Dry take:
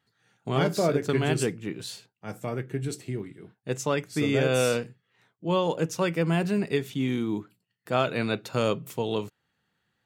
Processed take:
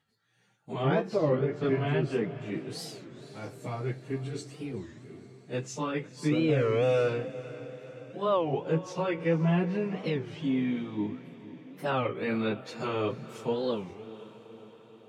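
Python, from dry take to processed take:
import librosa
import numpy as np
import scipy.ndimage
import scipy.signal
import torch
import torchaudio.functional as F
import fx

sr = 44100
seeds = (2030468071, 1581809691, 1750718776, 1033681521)

p1 = fx.env_lowpass_down(x, sr, base_hz=2400.0, full_db=-22.0)
p2 = fx.peak_eq(p1, sr, hz=1500.0, db=-2.5, octaves=0.39)
p3 = fx.stretch_vocoder_free(p2, sr, factor=1.5)
p4 = p3 + fx.echo_diffused(p3, sr, ms=488, feedback_pct=59, wet_db=-15.5, dry=0)
y = fx.record_warp(p4, sr, rpm=33.33, depth_cents=250.0)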